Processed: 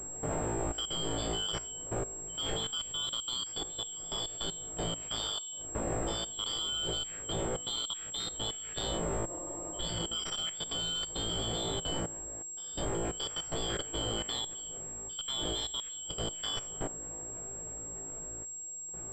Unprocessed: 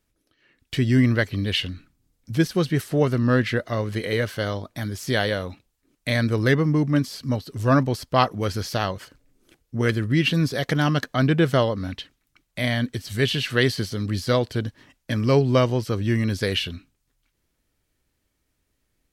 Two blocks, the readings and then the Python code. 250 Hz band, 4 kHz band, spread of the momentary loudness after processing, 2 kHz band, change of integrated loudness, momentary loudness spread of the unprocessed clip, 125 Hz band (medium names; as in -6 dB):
-18.5 dB, -2.0 dB, 7 LU, -20.0 dB, -12.0 dB, 11 LU, -19.5 dB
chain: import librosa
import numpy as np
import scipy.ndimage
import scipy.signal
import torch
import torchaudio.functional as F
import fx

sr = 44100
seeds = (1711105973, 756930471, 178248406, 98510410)

y = fx.band_shuffle(x, sr, order='3412')
y = fx.dmg_wind(y, sr, seeds[0], corner_hz=380.0, level_db=-21.0)
y = fx.peak_eq(y, sr, hz=100.0, db=-4.5, octaves=3.0)
y = fx.notch(y, sr, hz=1000.0, q=28.0)
y = 10.0 ** (-0.5 / 20.0) * np.tanh(y / 10.0 ** (-0.5 / 20.0))
y = fx.comb_fb(y, sr, f0_hz=56.0, decay_s=0.39, harmonics='all', damping=0.0, mix_pct=100)
y = fx.level_steps(y, sr, step_db=16)
y = fx.peak_eq(y, sr, hz=240.0, db=-8.0, octaves=0.56)
y = fx.spec_repair(y, sr, seeds[1], start_s=9.32, length_s=0.64, low_hz=240.0, high_hz=1300.0, source='before')
y = fx.pwm(y, sr, carrier_hz=7600.0)